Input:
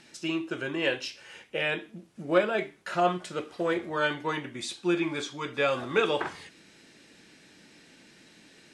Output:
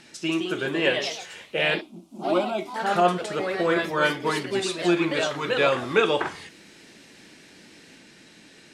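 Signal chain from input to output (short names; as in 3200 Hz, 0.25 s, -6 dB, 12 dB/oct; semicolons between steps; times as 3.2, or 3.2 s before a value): echoes that change speed 0.191 s, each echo +2 st, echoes 3, each echo -6 dB; 1.81–2.76 fixed phaser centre 470 Hz, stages 6; gain +4.5 dB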